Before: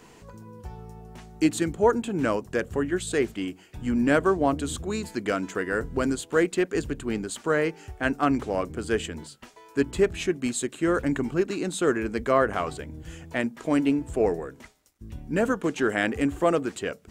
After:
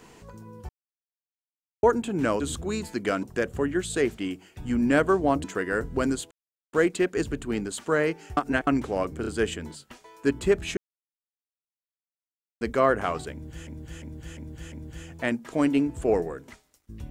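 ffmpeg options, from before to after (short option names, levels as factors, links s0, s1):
-filter_complex "[0:a]asplit=17[s0][s1][s2][s3][s4][s5][s6][s7][s8][s9][s10][s11][s12][s13][s14][s15][s16];[s0]atrim=end=0.69,asetpts=PTS-STARTPTS,afade=t=out:st=0.686:d=0.004:c=hsin[s17];[s1]atrim=start=0.69:end=1.83,asetpts=PTS-STARTPTS,volume=0[s18];[s2]atrim=start=1.83:end=2.402,asetpts=PTS-STARTPTS,afade=t=in:d=0.004:c=hsin[s19];[s3]atrim=start=4.608:end=5.442[s20];[s4]atrim=start=2.398:end=4.612[s21];[s5]atrim=start=5.438:end=6.31,asetpts=PTS-STARTPTS,afade=t=out:st=0.868:d=0.004:c=hsin,apad=pad_dur=0.42[s22];[s6]atrim=start=6.31:end=7.952,asetpts=PTS-STARTPTS,afade=t=in:d=0.004:c=hsin[s23];[s7]atrim=start=7.948:end=8.252,asetpts=PTS-STARTPTS,areverse[s24];[s8]atrim=start=8.248:end=8.822[s25];[s9]atrim=start=8.788:end=8.822[s26];[s10]atrim=start=8.788:end=10.29,asetpts=PTS-STARTPTS,afade=t=out:st=1.498:d=0.004:c=hsin[s27];[s11]atrim=start=10.29:end=12.13,asetpts=PTS-STARTPTS,volume=0[s28];[s12]atrim=start=12.13:end=13.192,asetpts=PTS-STARTPTS,afade=t=in:d=0.004:c=hsin[s29];[s13]atrim=start=12.838:end=13.192[s30];[s14]atrim=start=12.838:end=13.192[s31];[s15]atrim=start=12.838:end=13.192[s32];[s16]atrim=start=12.838[s33];[s17][s18][s19]concat=n=3:v=0:a=1[s34];[s34][s20]acrossfade=d=0.004:c1=hsin:c2=hsin[s35];[s35][s21]acrossfade=d=0.004:c1=hsin:c2=hsin[s36];[s22][s23]concat=n=2:v=0:a=1[s37];[s36][s37]acrossfade=d=0.004:c1=hsin:c2=hsin[s38];[s38][s24]acrossfade=d=0.004:c1=hsin:c2=hsin[s39];[s39][s25]acrossfade=d=0.004:c1=hsin:c2=hsin[s40];[s40][s26]acrossfade=d=0.004:c1=hsin:c2=hsin[s41];[s27][s28][s29]concat=n=3:v=0:a=1[s42];[s41][s42]acrossfade=d=0.004:c1=hsin:c2=hsin[s43];[s43][s30]acrossfade=d=0.004:c1=hsin:c2=hsin[s44];[s44][s31]acrossfade=d=0.004:c1=hsin:c2=hsin[s45];[s45][s32]acrossfade=d=0.004:c1=hsin:c2=hsin[s46];[s46][s33]acrossfade=d=0.004:c1=hsin:c2=hsin"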